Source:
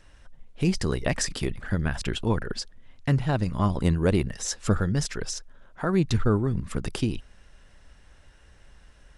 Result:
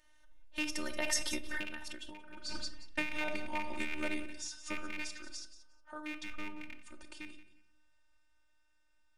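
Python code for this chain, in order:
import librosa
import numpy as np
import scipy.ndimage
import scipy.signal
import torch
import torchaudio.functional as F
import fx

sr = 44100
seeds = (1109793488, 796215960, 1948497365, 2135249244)

y = fx.rattle_buzz(x, sr, strikes_db=-24.0, level_db=-15.0)
y = fx.doppler_pass(y, sr, speed_mps=24, closest_m=4.4, pass_at_s=2.1)
y = fx.robotise(y, sr, hz=304.0)
y = fx.low_shelf(y, sr, hz=210.0, db=-6.0)
y = fx.notch(y, sr, hz=1100.0, q=17.0)
y = fx.echo_feedback(y, sr, ms=179, feedback_pct=17, wet_db=-14.0)
y = fx.room_shoebox(y, sr, seeds[0], volume_m3=1000.0, walls='furnished', distance_m=0.98)
y = fx.over_compress(y, sr, threshold_db=-40.0, ratio=-1.0)
y = fx.low_shelf(y, sr, hz=460.0, db=-7.5)
y = fx.end_taper(y, sr, db_per_s=110.0)
y = y * 10.0 ** (9.0 / 20.0)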